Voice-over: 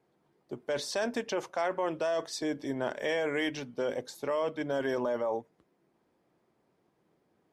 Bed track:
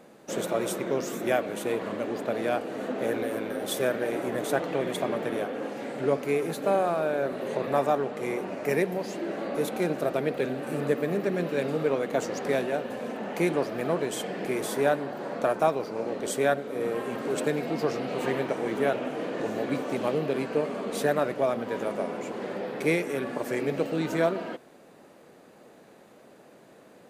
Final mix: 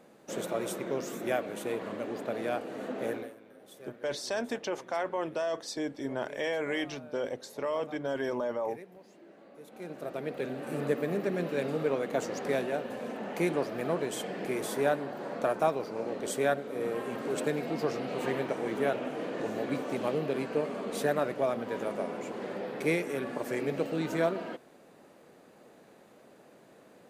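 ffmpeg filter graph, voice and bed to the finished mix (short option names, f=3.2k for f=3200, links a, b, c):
-filter_complex "[0:a]adelay=3350,volume=-1.5dB[a];[1:a]volume=14dB,afade=t=out:st=3.09:d=0.26:silence=0.133352,afade=t=in:st=9.65:d=1.15:silence=0.112202[b];[a][b]amix=inputs=2:normalize=0"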